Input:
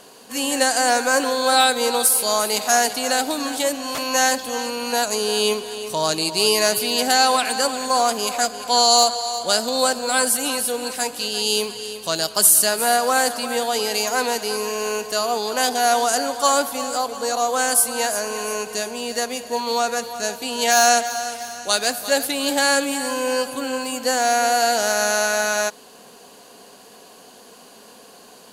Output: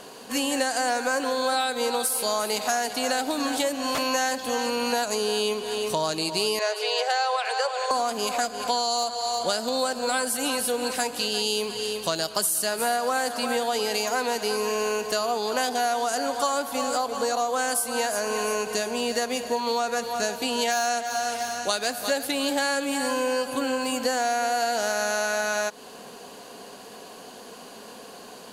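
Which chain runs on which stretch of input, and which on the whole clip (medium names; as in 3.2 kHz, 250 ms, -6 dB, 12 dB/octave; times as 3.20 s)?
6.59–7.91 s: steep high-pass 420 Hz 96 dB/octave + distance through air 85 m
whole clip: treble shelf 5 kHz -5.5 dB; compression, threshold -26 dBFS; trim +3.5 dB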